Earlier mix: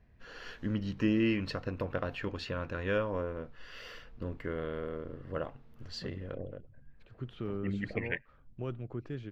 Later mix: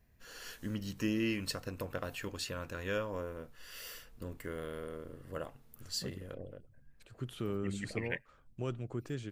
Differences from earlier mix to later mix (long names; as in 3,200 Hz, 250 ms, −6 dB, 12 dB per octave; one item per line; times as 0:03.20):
first voice −5.5 dB
master: remove high-frequency loss of the air 250 metres